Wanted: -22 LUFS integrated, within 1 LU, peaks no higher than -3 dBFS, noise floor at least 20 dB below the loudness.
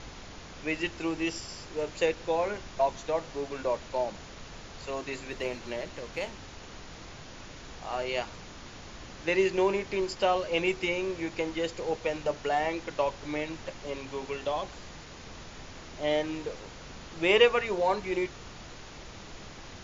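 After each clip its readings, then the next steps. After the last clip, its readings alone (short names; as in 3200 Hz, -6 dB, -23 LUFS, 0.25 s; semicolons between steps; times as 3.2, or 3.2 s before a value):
noise floor -46 dBFS; noise floor target -51 dBFS; loudness -30.5 LUFS; peak -8.0 dBFS; loudness target -22.0 LUFS
-> noise print and reduce 6 dB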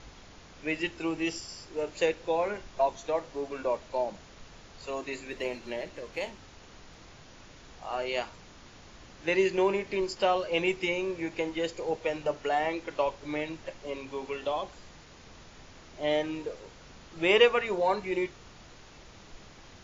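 noise floor -52 dBFS; loudness -30.5 LUFS; peak -8.0 dBFS; loudness target -22.0 LUFS
-> gain +8.5 dB; limiter -3 dBFS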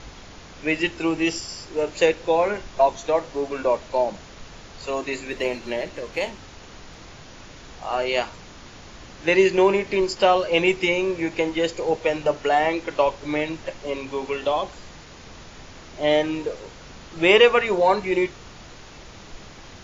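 loudness -22.5 LUFS; peak -3.0 dBFS; noise floor -44 dBFS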